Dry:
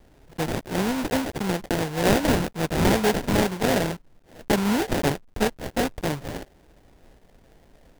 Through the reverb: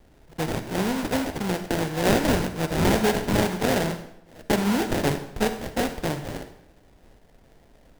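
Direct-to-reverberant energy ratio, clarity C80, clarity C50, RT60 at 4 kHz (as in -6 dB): 8.5 dB, 12.5 dB, 9.5 dB, 0.65 s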